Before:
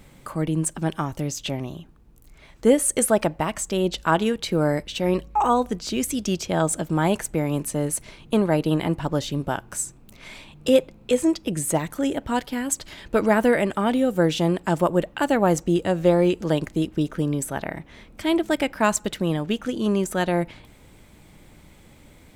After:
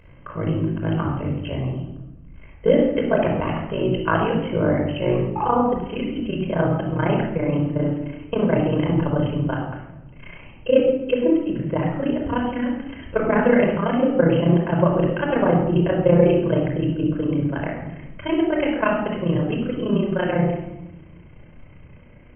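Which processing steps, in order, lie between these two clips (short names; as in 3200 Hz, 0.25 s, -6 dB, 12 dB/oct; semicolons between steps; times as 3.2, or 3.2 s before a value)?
AM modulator 53 Hz, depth 95%, from 5.41 s modulator 30 Hz; brick-wall FIR low-pass 3200 Hz; shoebox room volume 3500 m³, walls furnished, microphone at 5.2 m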